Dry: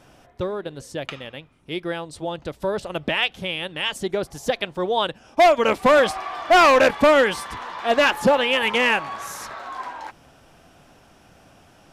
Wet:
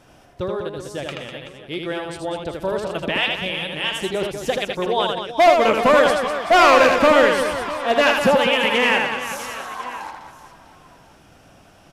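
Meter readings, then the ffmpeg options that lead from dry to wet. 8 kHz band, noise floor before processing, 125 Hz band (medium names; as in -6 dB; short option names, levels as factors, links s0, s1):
+2.0 dB, -53 dBFS, +2.0 dB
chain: -af "aecho=1:1:80|200|380|650|1055:0.631|0.398|0.251|0.158|0.1"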